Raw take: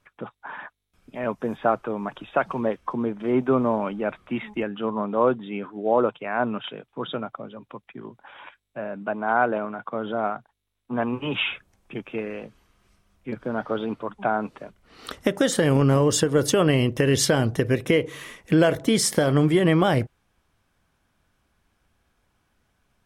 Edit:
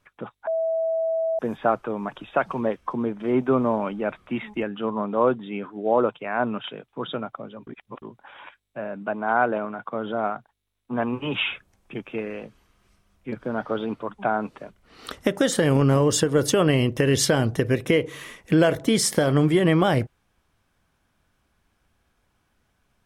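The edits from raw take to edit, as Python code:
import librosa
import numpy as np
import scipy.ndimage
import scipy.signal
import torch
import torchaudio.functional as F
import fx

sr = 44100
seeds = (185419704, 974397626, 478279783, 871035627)

y = fx.edit(x, sr, fx.bleep(start_s=0.47, length_s=0.92, hz=652.0, db=-21.0),
    fx.reverse_span(start_s=7.67, length_s=0.35), tone=tone)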